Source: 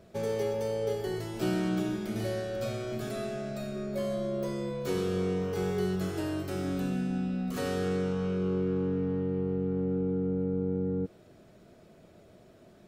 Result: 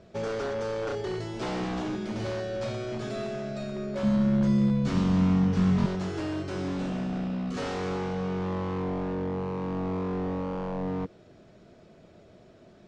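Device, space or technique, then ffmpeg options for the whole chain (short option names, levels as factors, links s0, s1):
synthesiser wavefolder: -filter_complex "[0:a]aeval=exprs='0.0398*(abs(mod(val(0)/0.0398+3,4)-2)-1)':c=same,lowpass=f=6800:w=0.5412,lowpass=f=6800:w=1.3066,asettb=1/sr,asplit=3[s0][s1][s2];[s0]atrim=end=4.034[s3];[s1]atrim=start=4.03:end=5.86,asetpts=PTS-STARTPTS,afade=t=in:d=0.004:c=qsin,afade=t=out:st=1.826:d=0.004:c=qsin,lowshelf=f=300:t=q:w=3:g=8.5[s4];[s2]atrim=start=5.856[s5];[s3][s4]acrossfade=d=0.004:c1=hsin:c2=qsin[s6];[s6][s5]acrossfade=d=0.004:c1=qsin:c2=hsin,volume=1.26"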